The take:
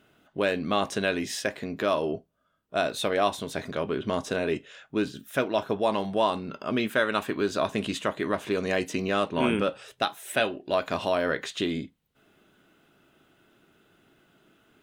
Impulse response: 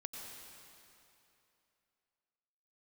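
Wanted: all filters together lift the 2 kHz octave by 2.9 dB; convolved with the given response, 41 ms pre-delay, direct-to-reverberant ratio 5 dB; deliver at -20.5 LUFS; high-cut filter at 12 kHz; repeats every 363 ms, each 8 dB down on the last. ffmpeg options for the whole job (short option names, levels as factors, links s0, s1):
-filter_complex "[0:a]lowpass=12000,equalizer=f=2000:t=o:g=4,aecho=1:1:363|726|1089|1452|1815:0.398|0.159|0.0637|0.0255|0.0102,asplit=2[s0][s1];[1:a]atrim=start_sample=2205,adelay=41[s2];[s1][s2]afir=irnorm=-1:irlink=0,volume=0.708[s3];[s0][s3]amix=inputs=2:normalize=0,volume=1.78"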